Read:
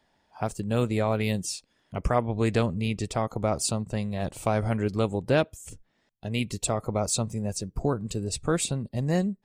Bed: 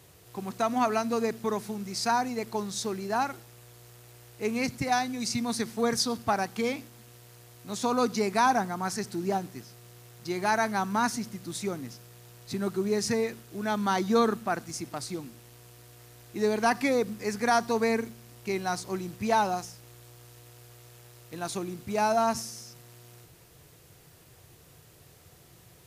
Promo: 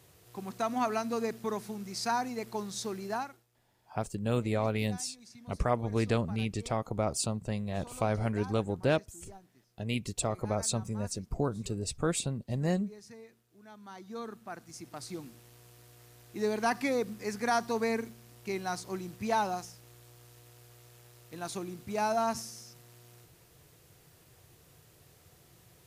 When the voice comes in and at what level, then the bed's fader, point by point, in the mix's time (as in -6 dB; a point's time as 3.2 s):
3.55 s, -4.5 dB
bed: 3.13 s -4.5 dB
3.48 s -23 dB
13.78 s -23 dB
15.19 s -4.5 dB